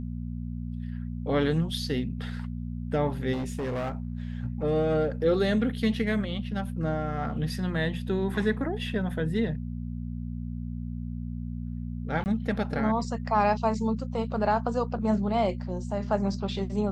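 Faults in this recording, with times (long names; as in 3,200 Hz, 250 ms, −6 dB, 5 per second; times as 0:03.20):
mains hum 60 Hz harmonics 4 −34 dBFS
0:03.32–0:04.27: clipping −27.5 dBFS
0:12.24–0:12.26: drop-out 19 ms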